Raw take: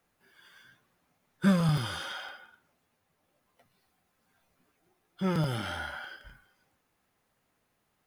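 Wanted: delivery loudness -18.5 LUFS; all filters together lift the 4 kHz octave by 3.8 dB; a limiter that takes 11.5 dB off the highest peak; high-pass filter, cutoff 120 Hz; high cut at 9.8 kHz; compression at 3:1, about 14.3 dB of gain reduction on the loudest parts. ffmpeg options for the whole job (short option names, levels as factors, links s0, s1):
-af "highpass=120,lowpass=9800,equalizer=f=4000:t=o:g=5,acompressor=threshold=0.0112:ratio=3,volume=22.4,alimiter=limit=0.376:level=0:latency=1"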